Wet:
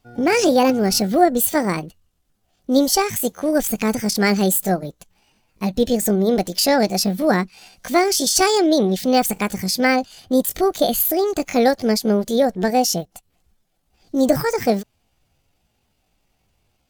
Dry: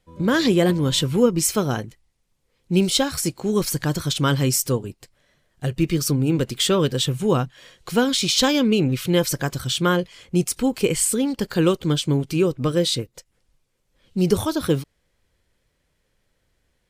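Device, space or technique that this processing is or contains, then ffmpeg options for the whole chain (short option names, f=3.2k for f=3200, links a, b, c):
chipmunk voice: -af "asetrate=64194,aresample=44100,atempo=0.686977,volume=2.5dB"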